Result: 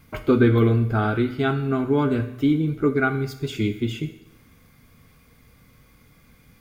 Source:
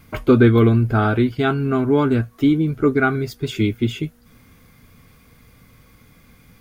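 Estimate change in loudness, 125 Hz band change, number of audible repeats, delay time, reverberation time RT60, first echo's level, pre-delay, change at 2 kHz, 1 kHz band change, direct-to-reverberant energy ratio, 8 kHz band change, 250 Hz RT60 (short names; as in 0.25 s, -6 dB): -4.0 dB, -3.5 dB, none, none, 0.85 s, none, 9 ms, -3.5 dB, -4.0 dB, 8.0 dB, n/a, 0.85 s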